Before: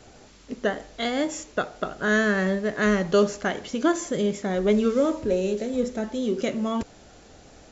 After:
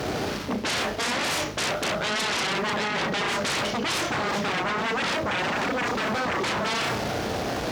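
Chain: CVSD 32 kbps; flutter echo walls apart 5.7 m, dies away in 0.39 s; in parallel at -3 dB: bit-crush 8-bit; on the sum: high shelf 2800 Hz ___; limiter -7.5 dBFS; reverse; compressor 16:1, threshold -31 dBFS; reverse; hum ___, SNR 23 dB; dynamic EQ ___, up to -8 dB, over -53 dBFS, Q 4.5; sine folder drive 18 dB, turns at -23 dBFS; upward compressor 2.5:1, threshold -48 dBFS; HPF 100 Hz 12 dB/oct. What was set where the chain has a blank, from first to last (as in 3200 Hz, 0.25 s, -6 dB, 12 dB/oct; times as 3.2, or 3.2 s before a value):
-9 dB, 50 Hz, 260 Hz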